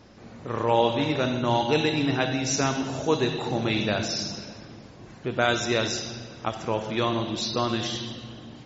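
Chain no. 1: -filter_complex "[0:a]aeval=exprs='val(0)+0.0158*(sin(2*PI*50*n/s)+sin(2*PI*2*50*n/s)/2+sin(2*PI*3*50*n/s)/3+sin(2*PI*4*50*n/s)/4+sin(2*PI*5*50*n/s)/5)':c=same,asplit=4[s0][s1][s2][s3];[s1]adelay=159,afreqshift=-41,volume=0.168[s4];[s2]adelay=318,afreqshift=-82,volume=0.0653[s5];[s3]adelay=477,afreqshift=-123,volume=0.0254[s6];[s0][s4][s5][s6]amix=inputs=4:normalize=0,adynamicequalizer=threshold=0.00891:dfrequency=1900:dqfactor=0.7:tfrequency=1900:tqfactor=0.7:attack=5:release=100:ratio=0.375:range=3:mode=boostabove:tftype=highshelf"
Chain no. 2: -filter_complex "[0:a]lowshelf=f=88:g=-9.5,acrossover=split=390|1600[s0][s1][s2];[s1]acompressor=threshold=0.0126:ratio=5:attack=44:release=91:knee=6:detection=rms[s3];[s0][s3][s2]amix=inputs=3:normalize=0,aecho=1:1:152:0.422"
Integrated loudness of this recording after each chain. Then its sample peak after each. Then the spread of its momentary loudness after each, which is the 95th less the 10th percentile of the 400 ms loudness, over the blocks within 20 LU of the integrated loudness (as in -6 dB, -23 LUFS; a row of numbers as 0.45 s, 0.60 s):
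-23.5 LUFS, -28.0 LUFS; -5.0 dBFS, -13.0 dBFS; 14 LU, 12 LU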